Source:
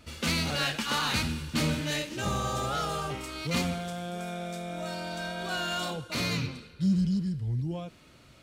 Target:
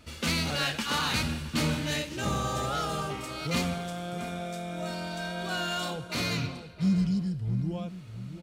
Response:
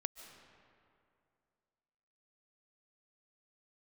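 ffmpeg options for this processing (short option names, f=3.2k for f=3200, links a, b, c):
-filter_complex "[0:a]asplit=2[a][b];[b]adelay=668,lowpass=f=1.4k:p=1,volume=-11dB,asplit=2[c][d];[d]adelay=668,lowpass=f=1.4k:p=1,volume=0.34,asplit=2[e][f];[f]adelay=668,lowpass=f=1.4k:p=1,volume=0.34,asplit=2[g][h];[h]adelay=668,lowpass=f=1.4k:p=1,volume=0.34[i];[a][c][e][g][i]amix=inputs=5:normalize=0"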